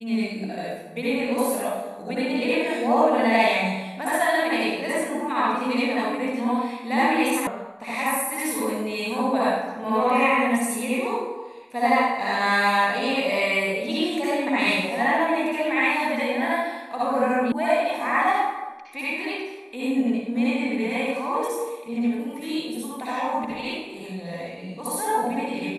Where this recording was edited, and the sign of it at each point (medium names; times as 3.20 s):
7.47 s: sound stops dead
17.52 s: sound stops dead